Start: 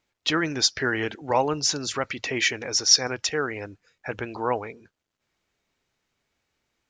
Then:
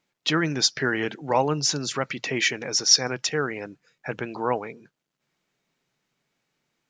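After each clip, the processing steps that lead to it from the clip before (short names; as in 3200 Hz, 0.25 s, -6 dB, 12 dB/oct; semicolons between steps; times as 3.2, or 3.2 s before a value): resonant low shelf 110 Hz -8.5 dB, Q 3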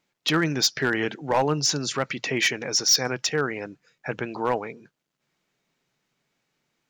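hard clip -15 dBFS, distortion -14 dB; gain +1 dB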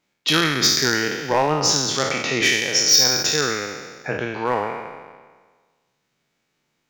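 spectral trails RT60 1.51 s; transient shaper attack +2 dB, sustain -4 dB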